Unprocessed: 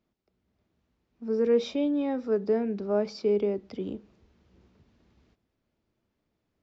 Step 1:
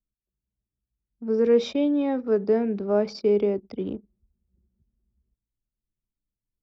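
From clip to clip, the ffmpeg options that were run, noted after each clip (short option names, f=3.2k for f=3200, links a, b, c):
-af "anlmdn=0.0398,volume=4dB"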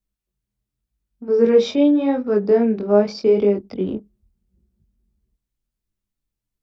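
-af "flanger=delay=19.5:depth=4.9:speed=0.84,volume=8.5dB"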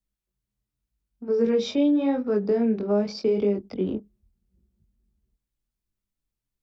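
-filter_complex "[0:a]acrossover=split=260|3000[a][b][c];[b]acompressor=threshold=-19dB:ratio=6[d];[a][d][c]amix=inputs=3:normalize=0,volume=-3dB"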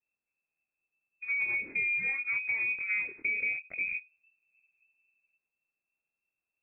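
-filter_complex "[0:a]lowpass=f=2.3k:t=q:w=0.5098,lowpass=f=2.3k:t=q:w=0.6013,lowpass=f=2.3k:t=q:w=0.9,lowpass=f=2.3k:t=q:w=2.563,afreqshift=-2700,tiltshelf=f=650:g=8,acrossover=split=530|2000[a][b][c];[a]acompressor=threshold=-53dB:ratio=4[d];[b]acompressor=threshold=-46dB:ratio=4[e];[c]acompressor=threshold=-32dB:ratio=4[f];[d][e][f]amix=inputs=3:normalize=0,volume=2dB"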